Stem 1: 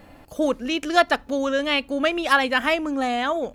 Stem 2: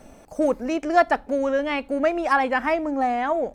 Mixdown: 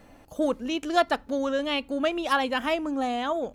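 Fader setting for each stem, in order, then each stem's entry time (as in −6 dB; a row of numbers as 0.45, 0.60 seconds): −6.0, −12.0 decibels; 0.00, 0.00 seconds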